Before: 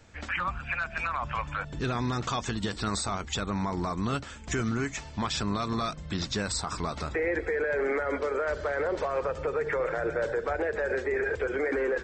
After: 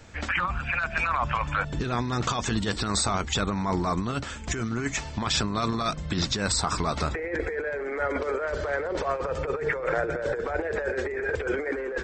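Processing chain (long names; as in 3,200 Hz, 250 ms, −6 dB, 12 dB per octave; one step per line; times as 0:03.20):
compressor whose output falls as the input rises −31 dBFS, ratio −0.5
level +4.5 dB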